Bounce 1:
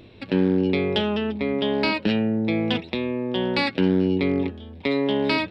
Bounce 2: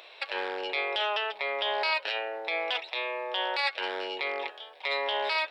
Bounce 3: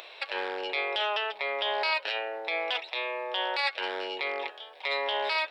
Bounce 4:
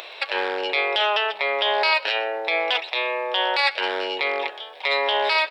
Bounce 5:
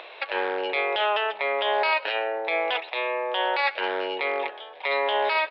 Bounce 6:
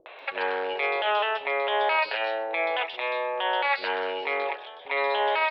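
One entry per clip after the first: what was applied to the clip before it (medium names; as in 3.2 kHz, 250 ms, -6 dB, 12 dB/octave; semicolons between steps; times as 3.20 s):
inverse Chebyshev high-pass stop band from 250 Hz, stop band 50 dB; in parallel at +1 dB: compression, threshold -35 dBFS, peak gain reduction 13.5 dB; on the sum: peak limiter -18 dBFS, peak gain reduction 10.5 dB
upward compressor, threshold -42 dBFS
delay 125 ms -21 dB; trim +8 dB
distance through air 340 m
three bands offset in time lows, mids, highs 60/190 ms, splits 360/3700 Hz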